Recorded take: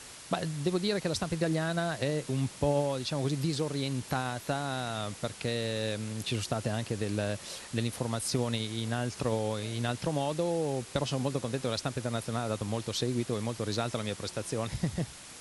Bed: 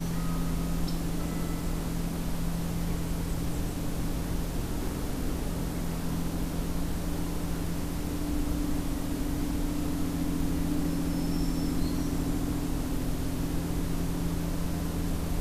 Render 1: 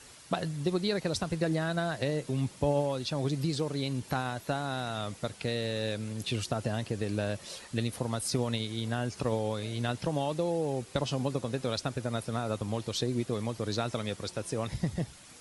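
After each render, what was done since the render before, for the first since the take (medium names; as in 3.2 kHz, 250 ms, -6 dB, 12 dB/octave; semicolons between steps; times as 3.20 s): noise reduction 7 dB, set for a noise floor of -48 dBFS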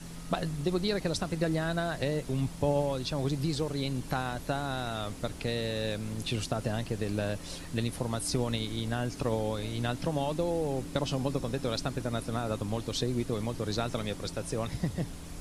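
add bed -13 dB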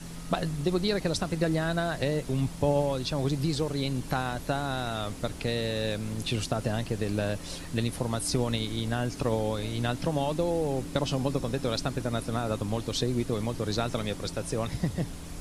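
trim +2.5 dB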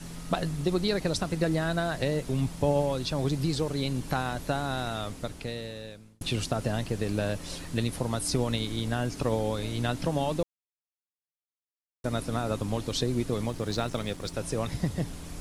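4.82–6.21 s: fade out; 10.43–12.04 s: mute; 13.49–14.34 s: companding laws mixed up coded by A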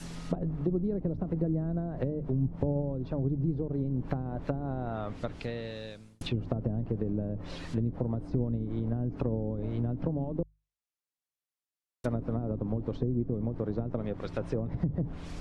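low-pass that closes with the level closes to 340 Hz, closed at -24.5 dBFS; hum notches 50/100/150 Hz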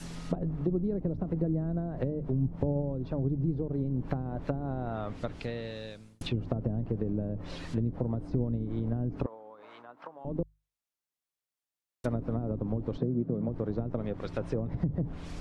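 9.26–10.25 s: resonant high-pass 1.1 kHz, resonance Q 2.3; 12.98–13.49 s: cabinet simulation 130–5000 Hz, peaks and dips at 170 Hz +9 dB, 590 Hz +5 dB, 1.4 kHz +5 dB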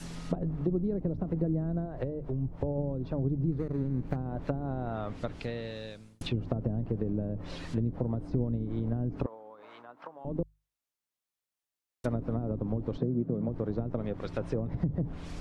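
1.85–2.78 s: peaking EQ 200 Hz -11 dB; 3.52–4.16 s: median filter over 41 samples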